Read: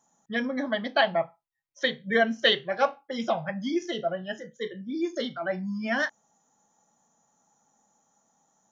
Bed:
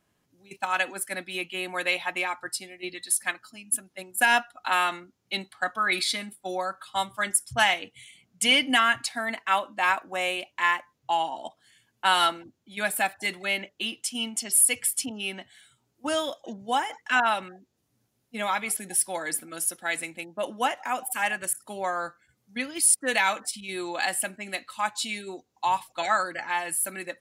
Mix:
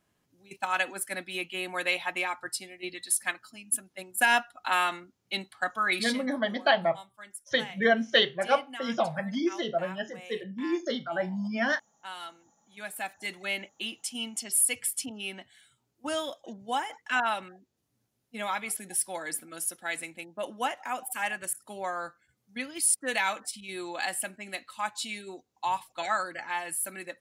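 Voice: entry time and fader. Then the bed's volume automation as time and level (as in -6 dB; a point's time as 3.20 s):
5.70 s, -0.5 dB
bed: 5.94 s -2 dB
6.50 s -19.5 dB
12.28 s -19.5 dB
13.44 s -4.5 dB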